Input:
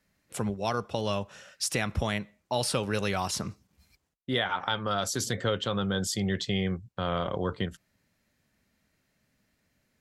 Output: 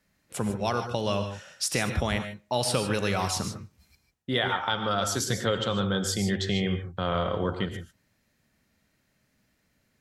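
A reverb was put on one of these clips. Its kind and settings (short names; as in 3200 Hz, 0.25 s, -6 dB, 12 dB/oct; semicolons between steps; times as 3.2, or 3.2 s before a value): non-linear reverb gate 0.17 s rising, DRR 7 dB; gain +1.5 dB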